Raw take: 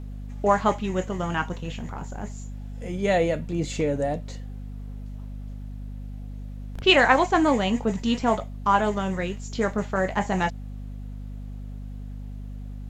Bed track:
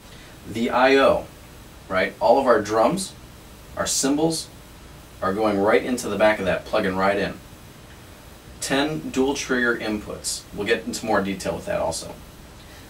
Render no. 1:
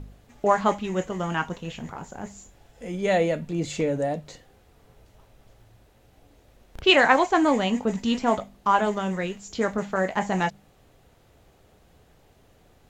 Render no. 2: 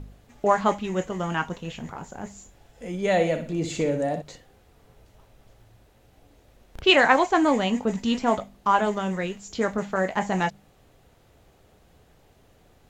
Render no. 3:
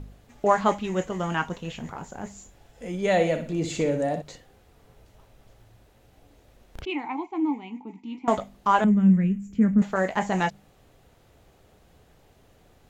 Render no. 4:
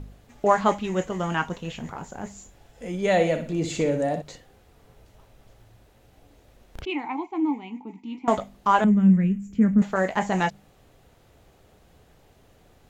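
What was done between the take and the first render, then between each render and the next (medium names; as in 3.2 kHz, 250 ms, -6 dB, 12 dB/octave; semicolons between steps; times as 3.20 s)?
de-hum 50 Hz, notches 5
3.11–4.22 s: flutter echo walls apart 10.5 m, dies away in 0.41 s
6.85–8.28 s: vowel filter u; 8.84–9.82 s: FFT filter 120 Hz 0 dB, 200 Hz +14 dB, 300 Hz -2 dB, 530 Hz -12 dB, 860 Hz -18 dB, 1.6 kHz -11 dB, 2.4 kHz -8 dB, 4.1 kHz -28 dB, 11 kHz -7 dB
trim +1 dB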